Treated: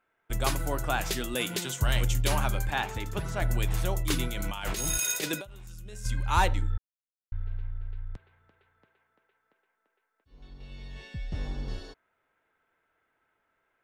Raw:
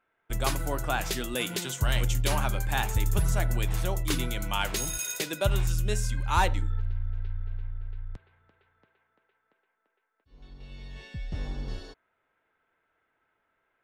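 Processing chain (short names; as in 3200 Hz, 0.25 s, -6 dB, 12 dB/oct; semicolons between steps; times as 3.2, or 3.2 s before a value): 2.7–3.42 three-band isolator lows -12 dB, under 160 Hz, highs -14 dB, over 5000 Hz; 4.28–6.06 negative-ratio compressor -32 dBFS, ratio -0.5; 6.78–7.32 mute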